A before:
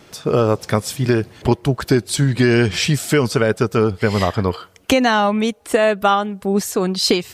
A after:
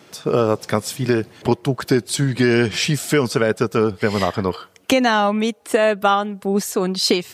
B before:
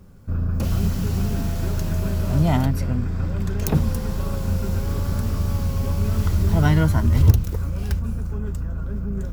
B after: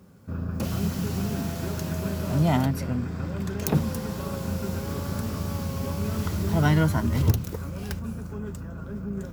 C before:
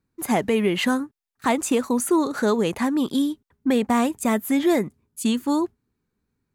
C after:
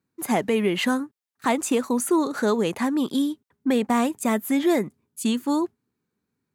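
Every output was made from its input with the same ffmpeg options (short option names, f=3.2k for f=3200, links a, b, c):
-af "highpass=130,volume=-1dB"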